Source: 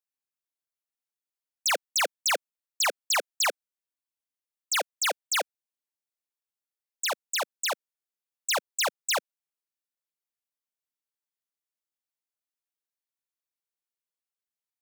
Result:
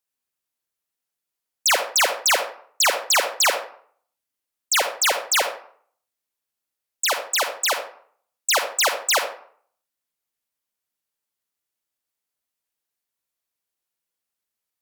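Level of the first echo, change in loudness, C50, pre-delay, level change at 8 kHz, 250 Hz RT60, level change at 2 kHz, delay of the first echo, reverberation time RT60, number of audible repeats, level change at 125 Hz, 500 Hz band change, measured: none, +7.5 dB, 7.5 dB, 35 ms, +7.5 dB, 0.55 s, +7.5 dB, none, 0.55 s, none, n/a, +8.0 dB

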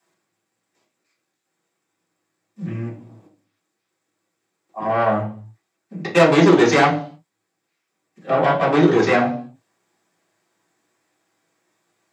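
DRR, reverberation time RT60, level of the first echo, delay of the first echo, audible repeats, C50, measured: -7.0 dB, 0.50 s, none, none, none, 9.5 dB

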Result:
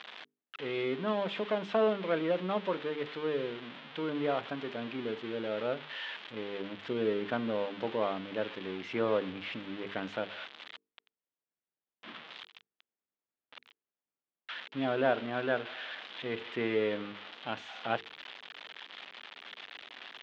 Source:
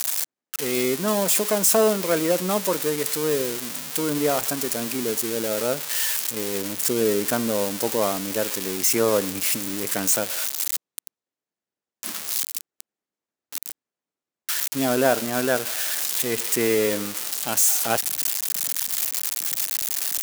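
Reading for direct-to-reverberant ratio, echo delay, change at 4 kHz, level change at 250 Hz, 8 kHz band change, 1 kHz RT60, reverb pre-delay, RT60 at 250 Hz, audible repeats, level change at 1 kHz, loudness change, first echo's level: none, none, -12.5 dB, -9.5 dB, under -40 dB, none, none, none, none, -8.0 dB, -12.0 dB, none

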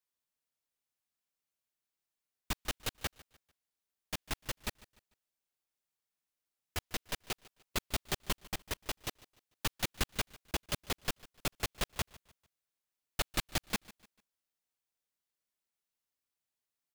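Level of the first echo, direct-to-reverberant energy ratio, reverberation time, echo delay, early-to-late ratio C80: -21.0 dB, none, none, 0.148 s, none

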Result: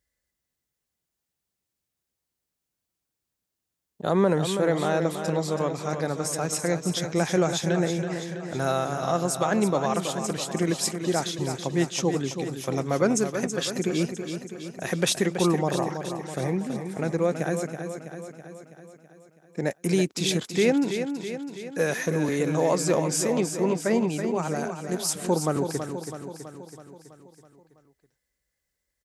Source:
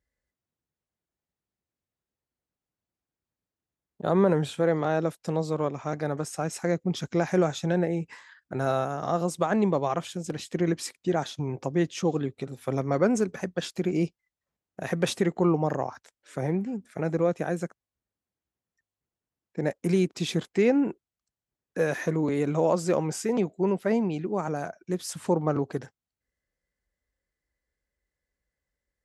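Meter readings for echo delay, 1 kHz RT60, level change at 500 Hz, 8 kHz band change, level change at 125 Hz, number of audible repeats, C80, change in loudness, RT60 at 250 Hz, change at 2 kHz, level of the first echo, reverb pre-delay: 0.327 s, none, +1.0 dB, +10.0 dB, +1.0 dB, 6, none, +1.5 dB, none, +4.0 dB, -8.0 dB, none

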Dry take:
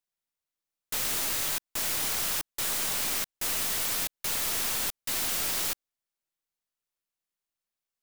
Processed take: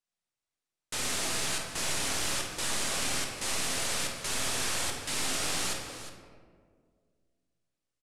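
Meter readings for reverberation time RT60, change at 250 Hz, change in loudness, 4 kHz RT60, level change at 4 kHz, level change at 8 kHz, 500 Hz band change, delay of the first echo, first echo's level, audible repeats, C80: 1.9 s, +4.0 dB, -3.0 dB, 1.0 s, +0.5 dB, -1.0 dB, +3.0 dB, 50 ms, -8.5 dB, 2, 4.5 dB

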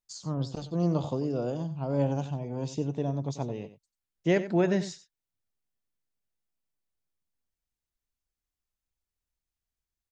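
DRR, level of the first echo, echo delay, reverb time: none, -13.5 dB, 92 ms, none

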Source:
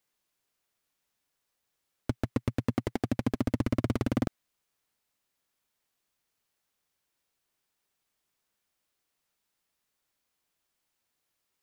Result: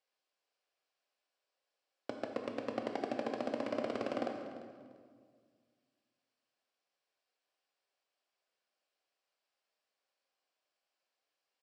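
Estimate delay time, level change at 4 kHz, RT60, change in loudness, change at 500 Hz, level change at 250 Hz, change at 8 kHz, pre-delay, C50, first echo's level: 0.345 s, -4.0 dB, 1.9 s, -7.5 dB, -0.5 dB, -10.5 dB, under -10 dB, 13 ms, 4.5 dB, -16.0 dB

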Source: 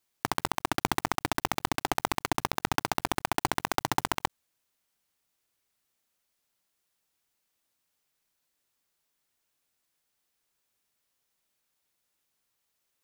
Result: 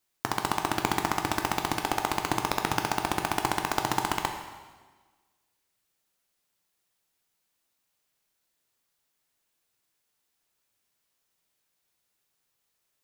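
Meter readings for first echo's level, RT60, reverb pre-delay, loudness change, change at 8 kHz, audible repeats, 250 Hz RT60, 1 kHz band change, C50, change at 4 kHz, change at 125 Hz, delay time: none, 1.4 s, 5 ms, +2.0 dB, +1.5 dB, none, 1.4 s, +2.0 dB, 6.5 dB, +1.5 dB, +2.0 dB, none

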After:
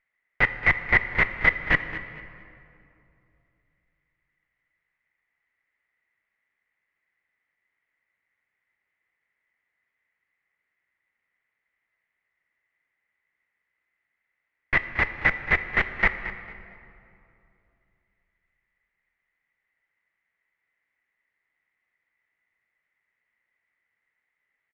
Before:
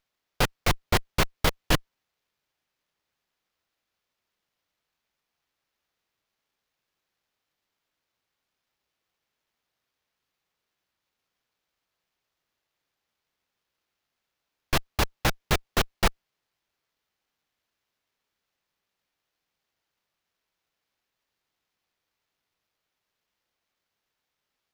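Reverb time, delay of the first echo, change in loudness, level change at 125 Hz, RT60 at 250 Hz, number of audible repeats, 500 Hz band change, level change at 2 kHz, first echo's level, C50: 2.7 s, 0.225 s, +4.5 dB, -4.5 dB, 3.0 s, 2, -4.0 dB, +11.0 dB, -14.5 dB, 9.5 dB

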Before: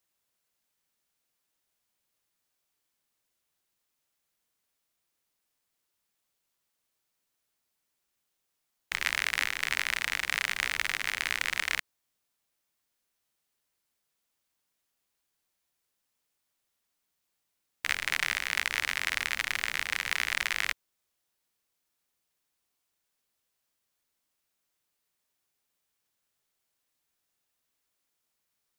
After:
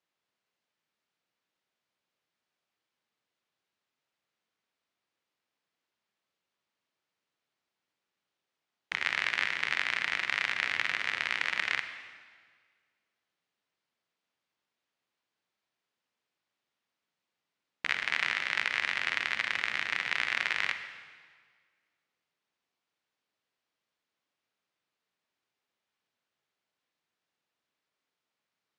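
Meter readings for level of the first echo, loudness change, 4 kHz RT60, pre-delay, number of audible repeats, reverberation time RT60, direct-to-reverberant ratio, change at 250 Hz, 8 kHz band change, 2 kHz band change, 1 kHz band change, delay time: none, -0.5 dB, 1.5 s, 35 ms, none, 1.7 s, 8.5 dB, 0.0 dB, -11.0 dB, 0.0 dB, +0.5 dB, none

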